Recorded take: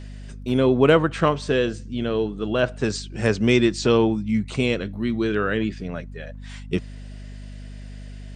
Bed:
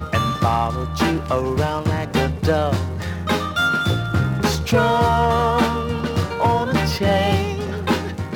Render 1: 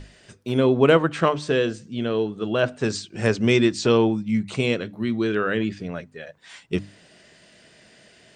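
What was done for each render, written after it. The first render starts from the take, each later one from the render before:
mains-hum notches 50/100/150/200/250/300 Hz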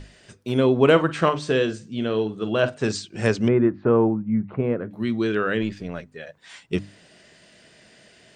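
0:00.82–0:02.92: double-tracking delay 46 ms −13 dB
0:03.48–0:04.91: low-pass filter 1,500 Hz 24 dB per octave
0:05.62–0:06.14: gain on one half-wave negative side −3 dB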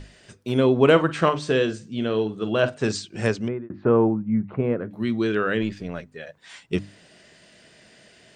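0:03.18–0:03.70: fade out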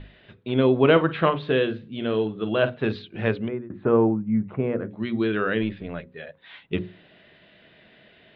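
Chebyshev low-pass filter 3,800 Hz, order 5
mains-hum notches 60/120/180/240/300/360/420/480/540 Hz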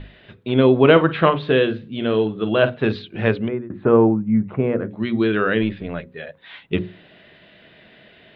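level +5 dB
brickwall limiter −1 dBFS, peak gain reduction 1 dB

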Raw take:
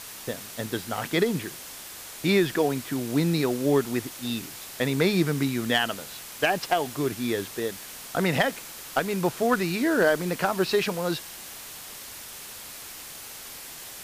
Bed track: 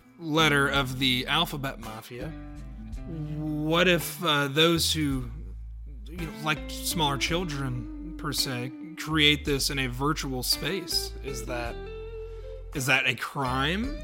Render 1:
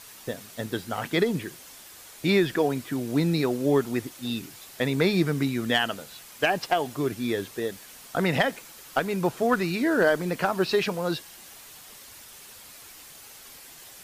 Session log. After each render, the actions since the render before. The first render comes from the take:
broadband denoise 7 dB, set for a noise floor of −41 dBFS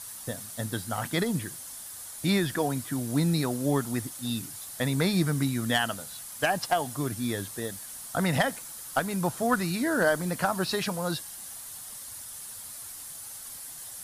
graphic EQ with 15 bands 100 Hz +5 dB, 400 Hz −9 dB, 2,500 Hz −7 dB, 10,000 Hz +11 dB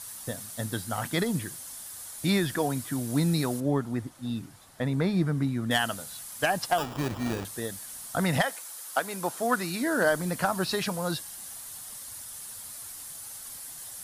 0:03.60–0:05.71: low-pass filter 1,300 Hz 6 dB per octave
0:06.78–0:07.45: sample-rate reduction 2,100 Hz
0:08.41–0:10.04: high-pass filter 570 Hz → 170 Hz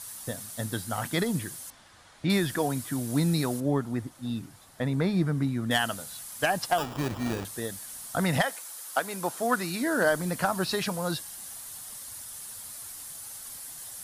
0:01.70–0:02.30: low-pass filter 3,000 Hz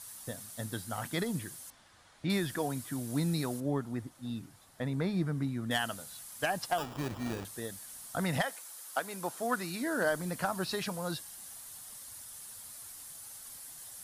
level −6 dB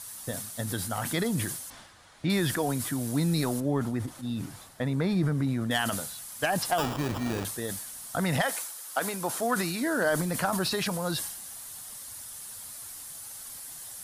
transient designer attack +1 dB, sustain +8 dB
in parallel at −2 dB: brickwall limiter −24.5 dBFS, peak gain reduction 7 dB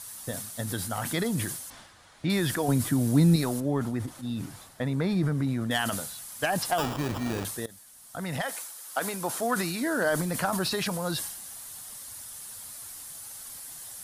0:02.68–0:03.36: low-shelf EQ 480 Hz +8 dB
0:07.66–0:09.10: fade in, from −17.5 dB

